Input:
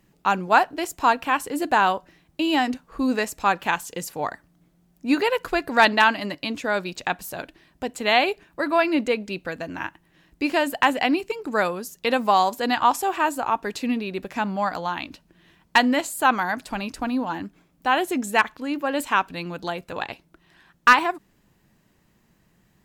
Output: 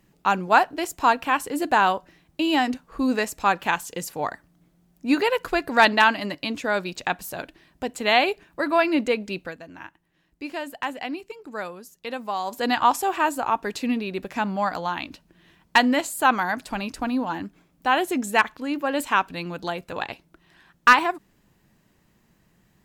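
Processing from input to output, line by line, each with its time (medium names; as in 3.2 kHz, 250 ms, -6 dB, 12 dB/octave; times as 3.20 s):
9.39–12.62 s: dip -10 dB, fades 0.19 s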